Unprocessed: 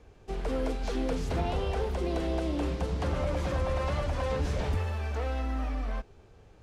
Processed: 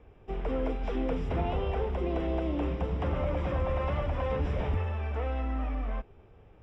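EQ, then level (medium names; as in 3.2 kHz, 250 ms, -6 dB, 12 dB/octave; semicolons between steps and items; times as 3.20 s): Savitzky-Golay filter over 25 samples; peaking EQ 1.6 kHz -4 dB 0.3 oct; 0.0 dB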